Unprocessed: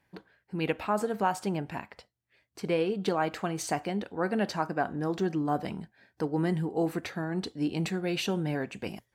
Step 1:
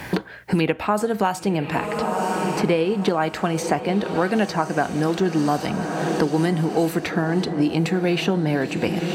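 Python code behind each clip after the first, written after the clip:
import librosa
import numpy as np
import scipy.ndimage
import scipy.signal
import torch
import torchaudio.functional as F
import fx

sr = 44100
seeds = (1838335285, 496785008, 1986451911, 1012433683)

y = fx.echo_diffused(x, sr, ms=1026, feedback_pct=56, wet_db=-12.5)
y = fx.band_squash(y, sr, depth_pct=100)
y = y * librosa.db_to_amplitude(8.0)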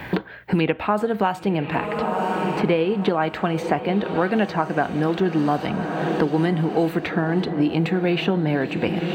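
y = fx.band_shelf(x, sr, hz=7900.0, db=-13.5, octaves=1.7)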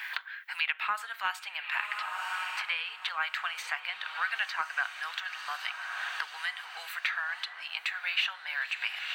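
y = scipy.signal.sosfilt(scipy.signal.cheby2(4, 60, 390.0, 'highpass', fs=sr, output='sos'), x)
y = fx.doppler_dist(y, sr, depth_ms=0.24)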